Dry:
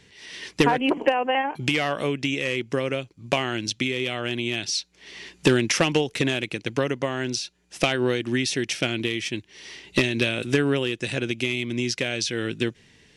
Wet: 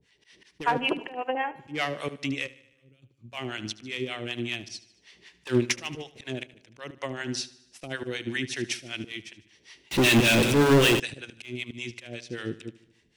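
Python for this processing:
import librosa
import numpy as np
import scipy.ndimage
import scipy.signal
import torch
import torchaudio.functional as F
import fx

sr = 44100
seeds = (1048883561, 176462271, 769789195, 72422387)

p1 = fx.harmonic_tremolo(x, sr, hz=5.2, depth_pct=100, crossover_hz=610.0)
p2 = np.clip(10.0 ** (15.5 / 20.0) * p1, -1.0, 1.0) / 10.0 ** (15.5 / 20.0)
p3 = fx.auto_swell(p2, sr, attack_ms=121.0)
p4 = fx.tone_stack(p3, sr, knobs='10-0-1', at=(2.46, 3.02), fade=0.02)
p5 = p4 + fx.echo_feedback(p4, sr, ms=75, feedback_pct=59, wet_db=-13.5, dry=0)
p6 = fx.power_curve(p5, sr, exponent=0.35, at=(9.91, 11.0))
p7 = fx.upward_expand(p6, sr, threshold_db=-45.0, expansion=1.5)
y = F.gain(torch.from_numpy(p7), 4.5).numpy()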